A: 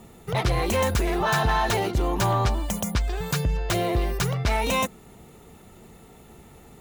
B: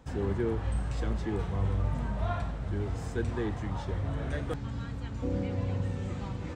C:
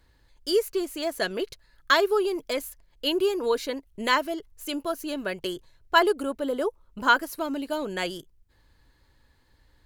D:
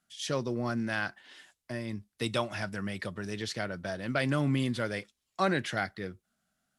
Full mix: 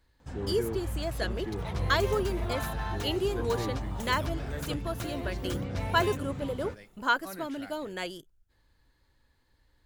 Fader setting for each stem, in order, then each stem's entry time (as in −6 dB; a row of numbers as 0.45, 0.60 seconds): −14.5, −3.5, −6.0, −16.0 decibels; 1.30, 0.20, 0.00, 1.85 seconds